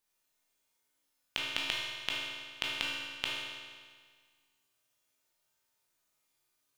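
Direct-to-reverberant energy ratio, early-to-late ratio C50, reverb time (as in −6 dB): −5.5 dB, −1.5 dB, 1.7 s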